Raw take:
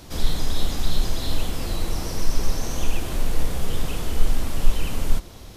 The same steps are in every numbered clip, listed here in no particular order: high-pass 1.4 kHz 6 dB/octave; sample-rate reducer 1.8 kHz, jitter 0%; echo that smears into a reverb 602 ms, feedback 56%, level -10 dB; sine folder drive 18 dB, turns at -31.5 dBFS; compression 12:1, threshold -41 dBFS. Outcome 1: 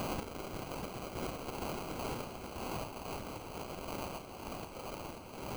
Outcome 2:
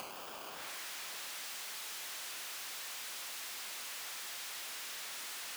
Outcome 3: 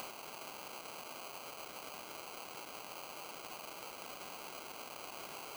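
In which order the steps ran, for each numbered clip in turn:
compression > sine folder > high-pass > sample-rate reducer > echo that smears into a reverb; sample-rate reducer > echo that smears into a reverb > sine folder > high-pass > compression; echo that smears into a reverb > sine folder > sample-rate reducer > high-pass > compression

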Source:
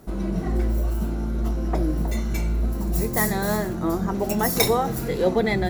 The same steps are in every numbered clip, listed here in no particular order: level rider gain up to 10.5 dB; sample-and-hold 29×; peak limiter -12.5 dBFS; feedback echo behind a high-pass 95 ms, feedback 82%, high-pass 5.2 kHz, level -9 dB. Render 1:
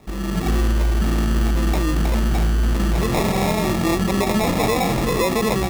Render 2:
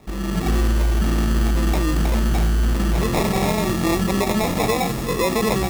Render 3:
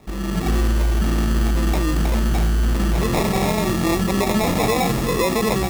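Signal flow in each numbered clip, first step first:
feedback echo behind a high-pass > sample-and-hold > level rider > peak limiter; level rider > sample-and-hold > peak limiter > feedback echo behind a high-pass; sample-and-hold > level rider > peak limiter > feedback echo behind a high-pass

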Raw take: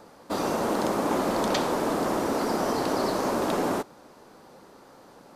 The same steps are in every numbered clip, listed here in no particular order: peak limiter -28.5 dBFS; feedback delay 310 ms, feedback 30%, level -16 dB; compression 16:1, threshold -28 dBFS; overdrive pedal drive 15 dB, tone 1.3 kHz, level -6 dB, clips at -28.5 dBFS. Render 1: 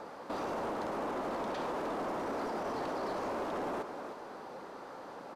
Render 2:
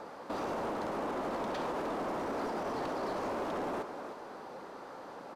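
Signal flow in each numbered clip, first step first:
compression > feedback delay > peak limiter > overdrive pedal; compression > feedback delay > overdrive pedal > peak limiter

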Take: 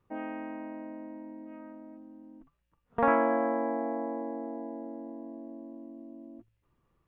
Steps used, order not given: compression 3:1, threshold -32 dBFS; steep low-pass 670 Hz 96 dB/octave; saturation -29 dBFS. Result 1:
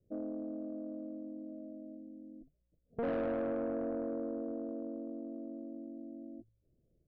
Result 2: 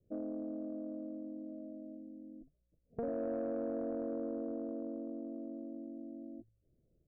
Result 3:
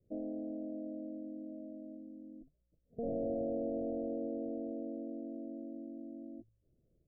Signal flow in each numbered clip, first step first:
steep low-pass > saturation > compression; compression > steep low-pass > saturation; saturation > compression > steep low-pass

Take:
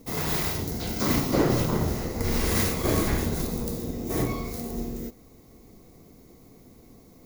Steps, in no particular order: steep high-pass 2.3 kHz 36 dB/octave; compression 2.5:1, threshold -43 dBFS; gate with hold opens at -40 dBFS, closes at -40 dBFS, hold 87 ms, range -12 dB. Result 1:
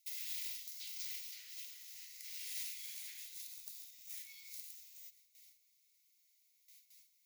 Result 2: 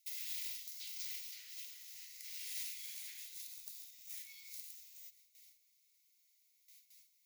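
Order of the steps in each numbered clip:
compression > gate with hold > steep high-pass; gate with hold > compression > steep high-pass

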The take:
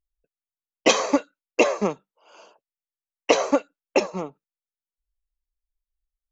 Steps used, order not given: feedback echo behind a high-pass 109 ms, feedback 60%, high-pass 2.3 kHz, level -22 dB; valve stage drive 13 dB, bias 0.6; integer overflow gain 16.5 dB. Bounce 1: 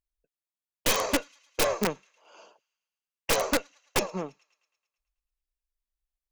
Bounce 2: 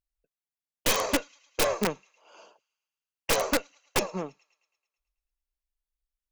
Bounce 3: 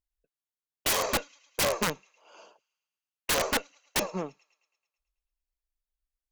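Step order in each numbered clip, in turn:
valve stage > feedback echo behind a high-pass > integer overflow; feedback echo behind a high-pass > valve stage > integer overflow; feedback echo behind a high-pass > integer overflow > valve stage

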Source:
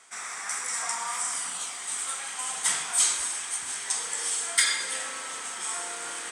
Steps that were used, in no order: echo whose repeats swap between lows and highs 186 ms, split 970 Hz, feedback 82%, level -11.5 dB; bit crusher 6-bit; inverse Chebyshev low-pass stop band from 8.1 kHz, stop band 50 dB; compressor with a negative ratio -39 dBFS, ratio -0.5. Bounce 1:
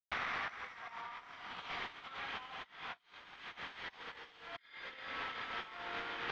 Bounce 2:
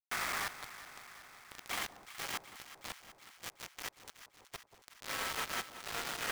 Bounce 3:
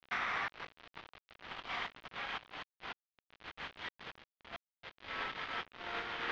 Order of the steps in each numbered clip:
echo whose repeats swap between lows and highs > bit crusher > compressor with a negative ratio > inverse Chebyshev low-pass; compressor with a negative ratio > inverse Chebyshev low-pass > bit crusher > echo whose repeats swap between lows and highs; echo whose repeats swap between lows and highs > compressor with a negative ratio > bit crusher > inverse Chebyshev low-pass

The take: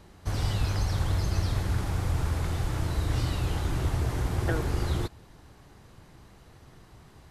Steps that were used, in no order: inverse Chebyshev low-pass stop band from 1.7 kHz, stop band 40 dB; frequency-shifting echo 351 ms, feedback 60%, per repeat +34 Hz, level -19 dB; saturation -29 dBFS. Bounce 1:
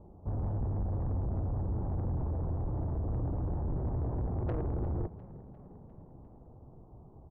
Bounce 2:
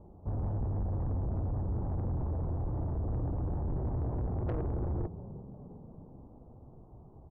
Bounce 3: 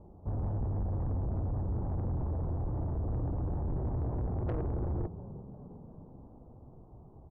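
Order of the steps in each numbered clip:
inverse Chebyshev low-pass > saturation > frequency-shifting echo; frequency-shifting echo > inverse Chebyshev low-pass > saturation; inverse Chebyshev low-pass > frequency-shifting echo > saturation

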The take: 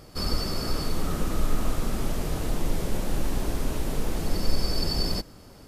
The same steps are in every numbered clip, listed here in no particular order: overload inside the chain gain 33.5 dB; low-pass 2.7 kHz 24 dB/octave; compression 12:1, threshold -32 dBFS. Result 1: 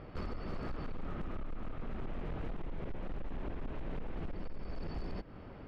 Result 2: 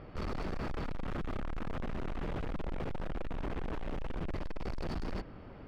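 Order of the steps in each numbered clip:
compression > low-pass > overload inside the chain; low-pass > overload inside the chain > compression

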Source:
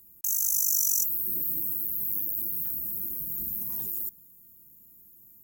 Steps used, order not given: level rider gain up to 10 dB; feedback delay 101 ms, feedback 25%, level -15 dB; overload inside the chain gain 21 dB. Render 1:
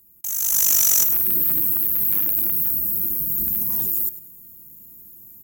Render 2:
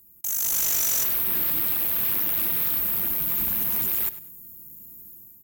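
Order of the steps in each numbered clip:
overload inside the chain > feedback delay > level rider; level rider > overload inside the chain > feedback delay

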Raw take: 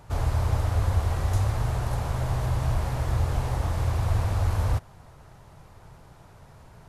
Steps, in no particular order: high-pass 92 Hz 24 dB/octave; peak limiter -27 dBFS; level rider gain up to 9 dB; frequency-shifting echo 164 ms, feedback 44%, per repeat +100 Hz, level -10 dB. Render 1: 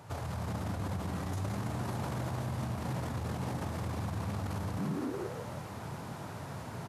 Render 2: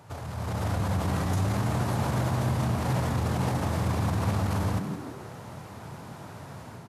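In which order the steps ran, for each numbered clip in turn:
frequency-shifting echo > level rider > peak limiter > high-pass; peak limiter > level rider > frequency-shifting echo > high-pass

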